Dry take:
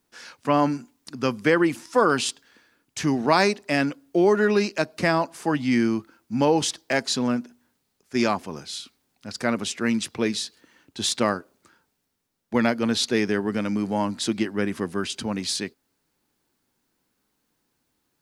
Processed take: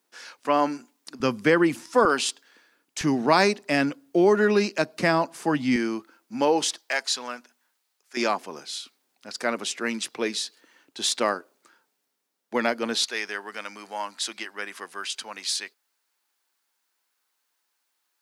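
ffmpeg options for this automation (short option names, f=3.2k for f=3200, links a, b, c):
-af "asetnsamples=n=441:p=0,asendcmd='1.2 highpass f 110;2.05 highpass f 330;3.01 highpass f 140;5.76 highpass f 340;6.78 highpass f 840;8.17 highpass f 360;13.04 highpass f 920',highpass=350"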